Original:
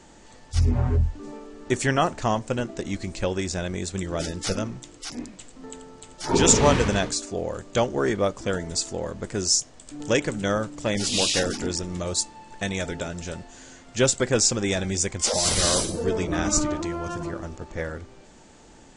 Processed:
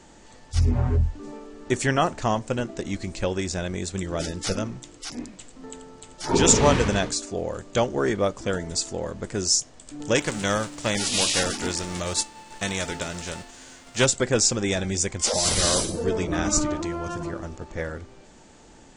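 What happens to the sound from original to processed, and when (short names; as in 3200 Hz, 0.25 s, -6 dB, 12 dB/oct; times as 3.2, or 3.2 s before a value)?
10.15–14.04 spectral whitening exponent 0.6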